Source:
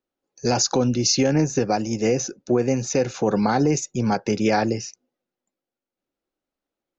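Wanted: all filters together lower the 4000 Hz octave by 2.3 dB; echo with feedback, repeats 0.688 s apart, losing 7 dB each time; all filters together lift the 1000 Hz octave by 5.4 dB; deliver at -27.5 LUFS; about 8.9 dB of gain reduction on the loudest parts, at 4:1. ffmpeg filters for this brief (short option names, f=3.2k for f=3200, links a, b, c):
-af "equalizer=f=1k:t=o:g=8,equalizer=f=4k:t=o:g=-3.5,acompressor=threshold=-24dB:ratio=4,aecho=1:1:688|1376|2064|2752|3440:0.447|0.201|0.0905|0.0407|0.0183"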